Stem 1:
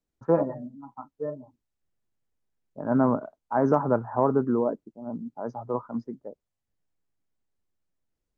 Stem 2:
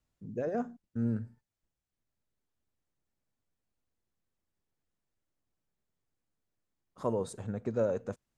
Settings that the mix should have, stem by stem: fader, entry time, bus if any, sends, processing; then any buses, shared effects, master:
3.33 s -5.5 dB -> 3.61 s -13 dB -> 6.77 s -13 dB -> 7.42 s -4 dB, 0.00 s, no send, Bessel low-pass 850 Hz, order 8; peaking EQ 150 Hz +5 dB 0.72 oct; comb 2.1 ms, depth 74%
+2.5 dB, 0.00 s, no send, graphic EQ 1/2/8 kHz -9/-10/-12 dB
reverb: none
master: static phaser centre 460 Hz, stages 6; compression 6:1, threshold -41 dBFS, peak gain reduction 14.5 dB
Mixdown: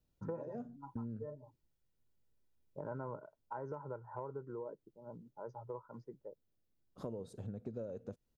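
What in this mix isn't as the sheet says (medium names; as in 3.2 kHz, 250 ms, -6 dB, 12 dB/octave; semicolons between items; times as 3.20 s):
stem 1: missing Bessel low-pass 850 Hz, order 8; master: missing static phaser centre 460 Hz, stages 6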